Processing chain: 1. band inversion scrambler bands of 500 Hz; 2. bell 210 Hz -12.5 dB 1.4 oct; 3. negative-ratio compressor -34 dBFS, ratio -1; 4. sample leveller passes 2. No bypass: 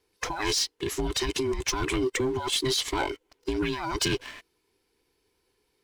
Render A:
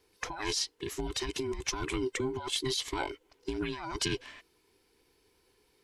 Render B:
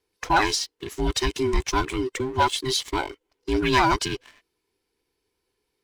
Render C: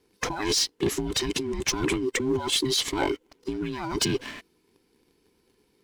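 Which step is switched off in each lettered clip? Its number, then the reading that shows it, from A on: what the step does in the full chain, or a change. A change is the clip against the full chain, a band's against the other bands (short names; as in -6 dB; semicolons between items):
4, crest factor change +6.0 dB; 3, crest factor change +2.5 dB; 2, 1 kHz band -2.0 dB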